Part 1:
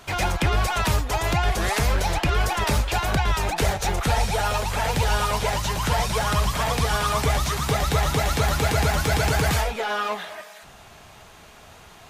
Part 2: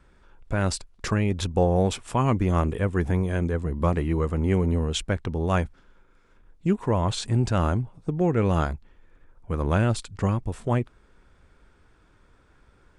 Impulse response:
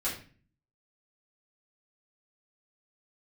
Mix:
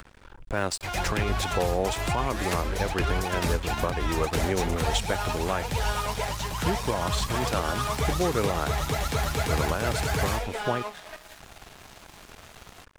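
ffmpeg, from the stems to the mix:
-filter_complex "[0:a]adelay=750,volume=-4dB[link_01];[1:a]acrossover=split=340|3000[link_02][link_03][link_04];[link_02]acompressor=threshold=-33dB:ratio=6[link_05];[link_05][link_03][link_04]amix=inputs=3:normalize=0,volume=2dB[link_06];[link_01][link_06]amix=inputs=2:normalize=0,acompressor=mode=upward:threshold=-28dB:ratio=2.5,aeval=exprs='sgn(val(0))*max(abs(val(0))-0.0112,0)':channel_layout=same,alimiter=limit=-13.5dB:level=0:latency=1:release=248"

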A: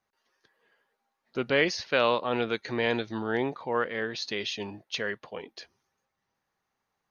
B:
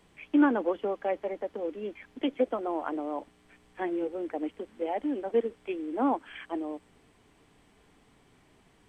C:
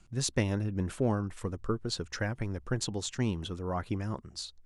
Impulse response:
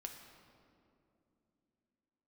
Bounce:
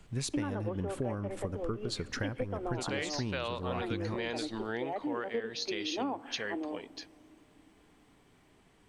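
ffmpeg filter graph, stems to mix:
-filter_complex "[0:a]aemphasis=mode=production:type=cd,adelay=1400,volume=-4.5dB[link_01];[1:a]volume=-3.5dB,asplit=2[link_02][link_03];[link_03]volume=-8.5dB[link_04];[2:a]equalizer=frequency=6100:width=1.5:gain=-3.5,volume=1dB,asplit=2[link_05][link_06];[link_06]volume=-11dB[link_07];[3:a]atrim=start_sample=2205[link_08];[link_04][link_07]amix=inputs=2:normalize=0[link_09];[link_09][link_08]afir=irnorm=-1:irlink=0[link_10];[link_01][link_02][link_05][link_10]amix=inputs=4:normalize=0,acompressor=threshold=-31dB:ratio=6"

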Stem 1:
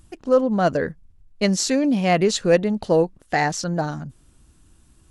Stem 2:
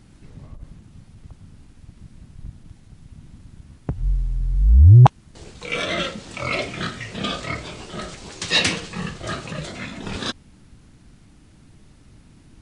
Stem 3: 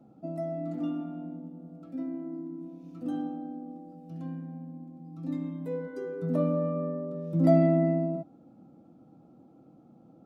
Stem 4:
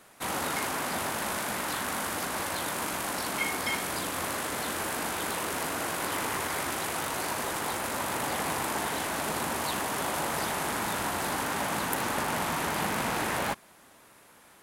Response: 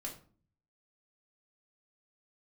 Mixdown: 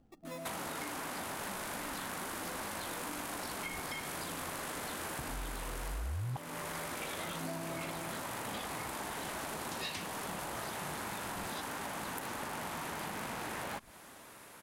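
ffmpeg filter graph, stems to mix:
-filter_complex "[0:a]acrusher=samples=29:mix=1:aa=0.000001,acompressor=threshold=-26dB:ratio=6,volume=-18.5dB[link_01];[1:a]adelay=1300,volume=-13.5dB[link_02];[2:a]volume=-13dB[link_03];[3:a]acompressor=threshold=-37dB:ratio=3,adelay=250,volume=2.5dB[link_04];[link_01][link_02][link_03][link_04]amix=inputs=4:normalize=0,acompressor=threshold=-37dB:ratio=6"

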